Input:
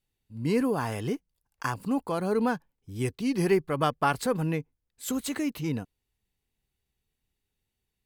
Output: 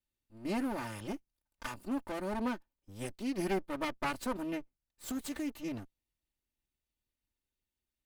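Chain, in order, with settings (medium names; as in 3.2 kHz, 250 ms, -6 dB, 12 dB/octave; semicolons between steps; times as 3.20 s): comb filter that takes the minimum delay 3.3 ms; trim -7.5 dB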